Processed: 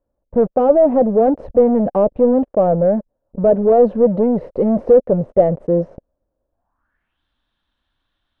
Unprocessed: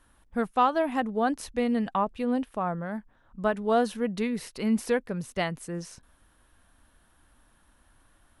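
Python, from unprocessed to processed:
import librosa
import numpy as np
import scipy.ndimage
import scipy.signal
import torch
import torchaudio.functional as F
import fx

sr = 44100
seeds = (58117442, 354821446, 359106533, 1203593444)

y = fx.leveller(x, sr, passes=5)
y = fx.filter_sweep_lowpass(y, sr, from_hz=560.0, to_hz=3600.0, start_s=6.5, end_s=7.22, q=5.1)
y = y * librosa.db_to_amplitude(-3.0)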